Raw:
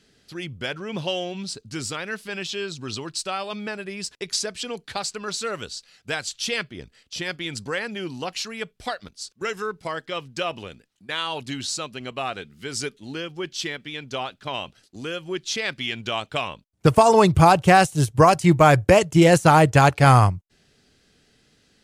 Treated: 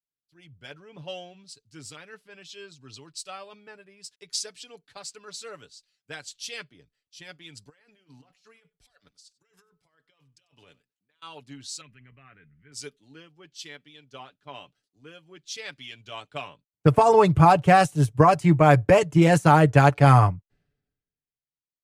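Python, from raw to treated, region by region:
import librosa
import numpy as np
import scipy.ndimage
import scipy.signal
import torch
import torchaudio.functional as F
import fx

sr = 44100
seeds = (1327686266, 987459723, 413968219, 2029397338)

y = fx.chain(x, sr, fx.low_shelf(hz=480.0, db=-6.5),
    fx.over_compress(threshold_db=-40.0, ratio=-1.0),
    fx.echo_single(ms=95, db=-18.0), at=(7.69, 11.22))
y = fx.chain(y, sr, fx.curve_eq(hz=(160.0, 730.0, 2000.0, 4100.0), db=(0, -16, 4, -23)),
    fx.env_flatten(amount_pct=70), at=(11.81, 12.72))
y = y + 0.47 * np.pad(y, (int(6.9 * sr / 1000.0), 0))[:len(y)]
y = fx.band_widen(y, sr, depth_pct=100)
y = y * librosa.db_to_amplitude(-12.0)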